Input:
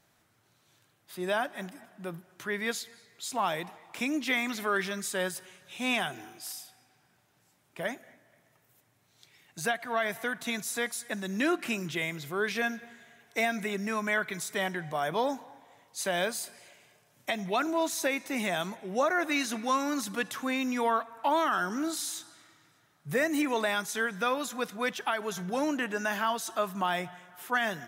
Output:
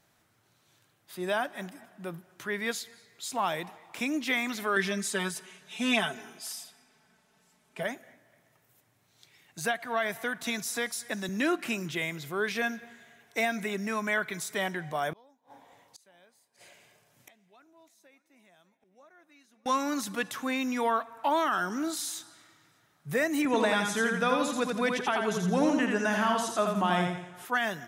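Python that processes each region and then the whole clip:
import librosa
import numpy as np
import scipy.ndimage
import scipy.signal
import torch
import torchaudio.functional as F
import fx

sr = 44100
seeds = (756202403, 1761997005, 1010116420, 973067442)

y = fx.chain(x, sr, fx.lowpass(hz=11000.0, slope=12),
    fx.comb(ms=4.6, depth=0.89), at=(4.76, 7.83))
y = fx.chain(y, sr, fx.peak_eq(hz=5300.0, db=5.0, octaves=0.31),
    fx.band_squash(depth_pct=40), at=(10.43, 11.29))
y = fx.chain(y, sr, fx.gate_flip(shuts_db=-36.0, range_db=-31),
    fx.echo_single(ms=600, db=-19.0), at=(15.13, 19.66))
y = fx.chain(y, sr, fx.lowpass(hz=11000.0, slope=24),
    fx.low_shelf(hz=310.0, db=9.0),
    fx.echo_feedback(ms=84, feedback_pct=40, wet_db=-4), at=(23.45, 27.45))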